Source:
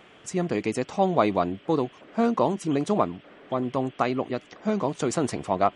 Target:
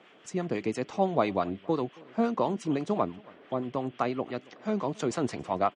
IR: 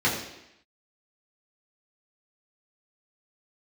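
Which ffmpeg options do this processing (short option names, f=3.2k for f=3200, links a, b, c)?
-filter_complex "[0:a]lowpass=6.5k,acrossover=split=150[a][b];[a]aeval=exprs='sgn(val(0))*max(abs(val(0))-0.00112,0)':c=same[c];[c][b]amix=inputs=2:normalize=0,acrossover=split=790[d][e];[d]aeval=exprs='val(0)*(1-0.5/2+0.5/2*cos(2*PI*5.9*n/s))':c=same[f];[e]aeval=exprs='val(0)*(1-0.5/2-0.5/2*cos(2*PI*5.9*n/s))':c=same[g];[f][g]amix=inputs=2:normalize=0,asplit=2[h][i];[i]adelay=274.1,volume=-24dB,highshelf=f=4k:g=-6.17[j];[h][j]amix=inputs=2:normalize=0,volume=-2dB"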